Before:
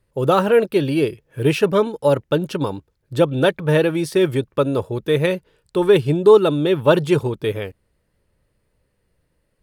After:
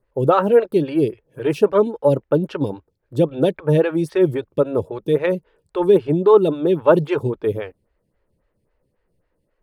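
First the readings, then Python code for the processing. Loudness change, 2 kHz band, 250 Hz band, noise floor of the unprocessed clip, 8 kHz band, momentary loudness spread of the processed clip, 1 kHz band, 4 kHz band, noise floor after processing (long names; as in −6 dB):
0.0 dB, −6.0 dB, 0.0 dB, −69 dBFS, can't be measured, 11 LU, 0.0 dB, −9.0 dB, −71 dBFS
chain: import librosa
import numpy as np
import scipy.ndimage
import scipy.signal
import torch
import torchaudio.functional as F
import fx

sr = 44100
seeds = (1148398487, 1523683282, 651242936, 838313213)

y = fx.high_shelf(x, sr, hz=2900.0, db=-9.5)
y = fx.stagger_phaser(y, sr, hz=3.7)
y = y * librosa.db_to_amplitude(2.5)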